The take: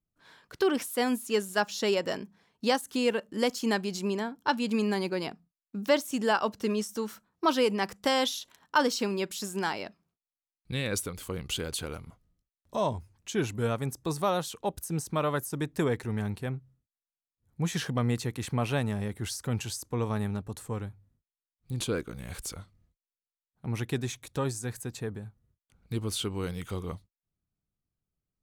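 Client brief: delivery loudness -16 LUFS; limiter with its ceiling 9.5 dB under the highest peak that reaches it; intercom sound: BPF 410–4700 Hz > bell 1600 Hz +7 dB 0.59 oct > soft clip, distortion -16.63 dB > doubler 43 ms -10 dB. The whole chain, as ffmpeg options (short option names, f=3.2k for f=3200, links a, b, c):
-filter_complex "[0:a]alimiter=limit=-21dB:level=0:latency=1,highpass=410,lowpass=4.7k,equalizer=f=1.6k:t=o:w=0.59:g=7,asoftclip=threshold=-23dB,asplit=2[a][b];[b]adelay=43,volume=-10dB[c];[a][c]amix=inputs=2:normalize=0,volume=20.5dB"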